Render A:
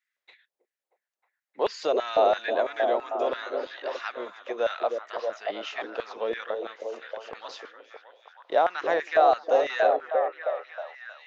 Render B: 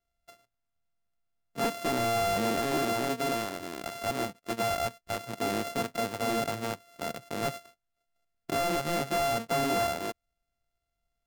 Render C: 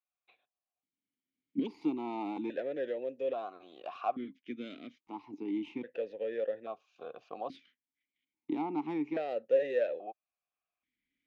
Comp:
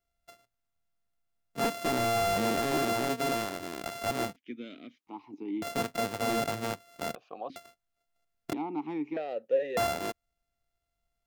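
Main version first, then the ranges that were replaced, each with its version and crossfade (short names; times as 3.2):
B
4.36–5.62 from C
7.15–7.56 from C
8.53–9.77 from C
not used: A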